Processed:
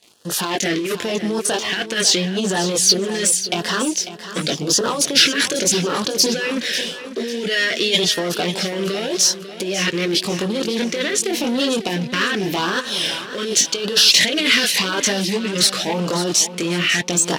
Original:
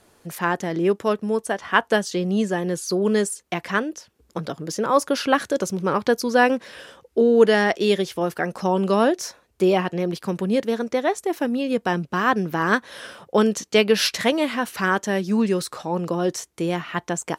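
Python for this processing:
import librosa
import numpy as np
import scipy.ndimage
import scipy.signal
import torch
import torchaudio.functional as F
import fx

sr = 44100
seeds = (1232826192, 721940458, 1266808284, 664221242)

y = fx.chorus_voices(x, sr, voices=2, hz=0.42, base_ms=22, depth_ms=1.5, mix_pct=45)
y = fx.over_compress(y, sr, threshold_db=-28.0, ratio=-1.0)
y = fx.leveller(y, sr, passes=3)
y = fx.weighting(y, sr, curve='D')
y = fx.filter_lfo_notch(y, sr, shape='sine', hz=0.88, low_hz=790.0, high_hz=2300.0, q=1.1)
y = fx.echo_feedback(y, sr, ms=546, feedback_pct=38, wet_db=-12)
y = y * librosa.db_to_amplitude(-1.0)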